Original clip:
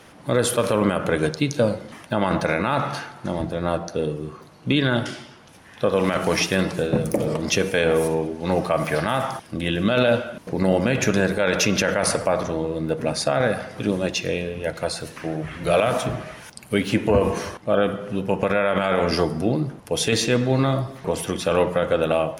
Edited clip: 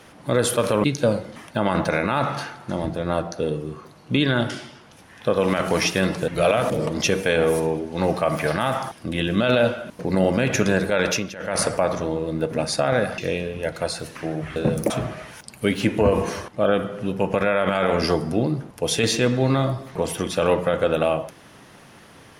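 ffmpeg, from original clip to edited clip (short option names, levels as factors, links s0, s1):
-filter_complex "[0:a]asplit=9[s0][s1][s2][s3][s4][s5][s6][s7][s8];[s0]atrim=end=0.842[s9];[s1]atrim=start=1.398:end=6.842[s10];[s2]atrim=start=15.568:end=15.992[s11];[s3]atrim=start=7.178:end=11.79,asetpts=PTS-STARTPTS,afade=t=out:st=4.362:d=0.25:silence=0.158489[s12];[s4]atrim=start=11.79:end=11.85,asetpts=PTS-STARTPTS,volume=0.158[s13];[s5]atrim=start=11.85:end=13.662,asetpts=PTS-STARTPTS,afade=t=in:d=0.25:silence=0.158489[s14];[s6]atrim=start=14.188:end=15.572[s15];[s7]atrim=start=6.838:end=7.182[s16];[s8]atrim=start=15.988[s17];[s9][s10]acrossfade=d=0.004:c1=hsin:c2=hsin[s18];[s18][s11]acrossfade=d=0.004:c1=hsin:c2=hsin[s19];[s12][s13][s14]concat=n=3:v=0:a=1[s20];[s19][s20]acrossfade=d=0.004:c1=hsin:c2=hsin[s21];[s21][s15]acrossfade=d=0.004:c1=hsin:c2=hsin[s22];[s22][s16]acrossfade=d=0.004:c1=hsin:c2=hsin[s23];[s23][s17]acrossfade=d=0.004:c1=hsin:c2=hsin"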